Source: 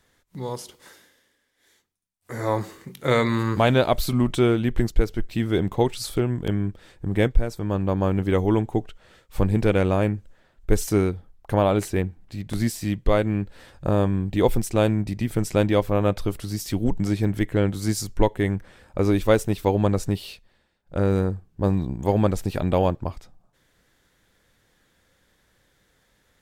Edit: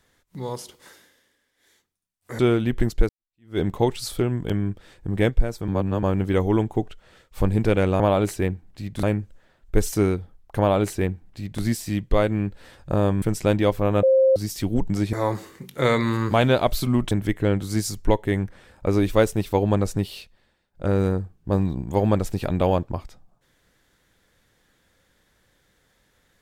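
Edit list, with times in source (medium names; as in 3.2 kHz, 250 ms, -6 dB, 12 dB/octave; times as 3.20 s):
2.39–4.37 s: move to 17.23 s
5.07–5.57 s: fade in exponential
7.66–8.01 s: reverse
11.54–12.57 s: copy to 9.98 s
14.17–15.32 s: delete
16.13–16.46 s: bleep 529 Hz -13 dBFS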